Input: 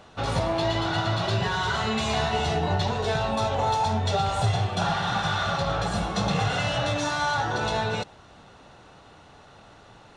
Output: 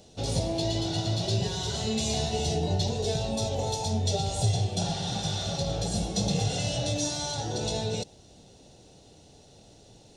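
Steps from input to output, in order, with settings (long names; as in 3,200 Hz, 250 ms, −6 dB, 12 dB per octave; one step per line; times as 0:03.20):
drawn EQ curve 470 Hz 0 dB, 770 Hz −7 dB, 1,200 Hz −22 dB, 5,400 Hz +7 dB
level −1 dB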